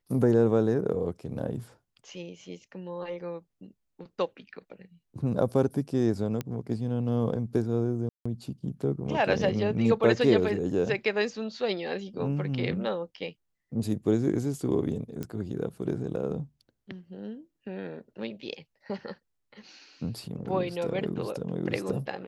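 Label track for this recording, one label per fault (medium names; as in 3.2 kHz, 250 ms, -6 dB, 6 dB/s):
6.410000	6.410000	pop -18 dBFS
8.090000	8.260000	dropout 165 ms
15.230000	15.230000	pop -21 dBFS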